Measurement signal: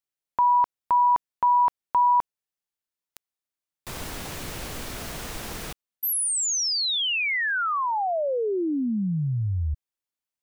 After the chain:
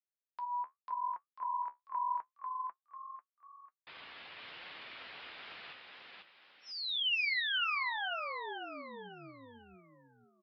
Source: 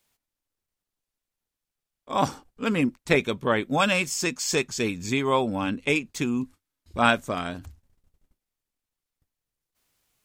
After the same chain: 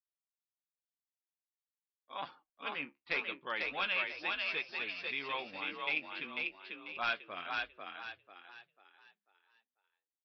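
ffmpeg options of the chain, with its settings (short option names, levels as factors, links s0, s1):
-filter_complex "[0:a]afftdn=nr=16:nf=-48,lowpass=f=3100:w=0.5412,lowpass=f=3100:w=1.3066,agate=range=0.00631:threshold=0.00631:ratio=3:release=206:detection=rms,aderivative,dynaudnorm=f=470:g=9:m=1.78,aresample=11025,asoftclip=type=hard:threshold=0.0708,aresample=44100,flanger=delay=5.5:depth=8.9:regen=54:speed=0.85:shape=sinusoidal,asplit=2[s0][s1];[s1]asplit=5[s2][s3][s4][s5][s6];[s2]adelay=494,afreqshift=44,volume=0.708[s7];[s3]adelay=988,afreqshift=88,volume=0.254[s8];[s4]adelay=1482,afreqshift=132,volume=0.0923[s9];[s5]adelay=1976,afreqshift=176,volume=0.0331[s10];[s6]adelay=2470,afreqshift=220,volume=0.0119[s11];[s7][s8][s9][s10][s11]amix=inputs=5:normalize=0[s12];[s0][s12]amix=inputs=2:normalize=0,volume=1.19"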